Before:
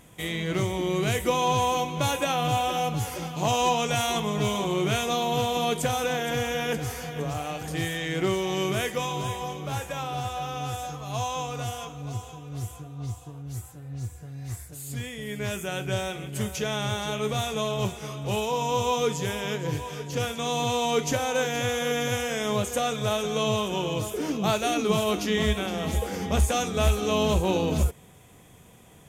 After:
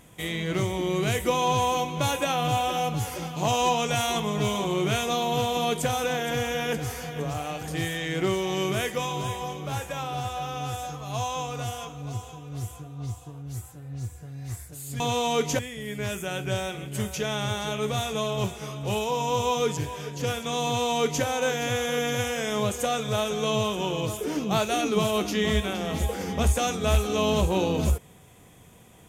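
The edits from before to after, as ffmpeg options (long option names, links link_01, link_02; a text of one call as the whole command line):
ffmpeg -i in.wav -filter_complex "[0:a]asplit=4[link_01][link_02][link_03][link_04];[link_01]atrim=end=15.002[link_05];[link_02]atrim=start=20.578:end=21.172[link_06];[link_03]atrim=start=14.998:end=19.182[link_07];[link_04]atrim=start=19.698[link_08];[link_05][link_06]acrossfade=duration=0.004:curve1=hsin:curve2=hsin[link_09];[link_09][link_07]acrossfade=duration=0.004:curve1=hsin:curve2=hsin[link_10];[link_10][link_08]acrossfade=duration=0.004:curve1=hsin:curve2=hsin" out.wav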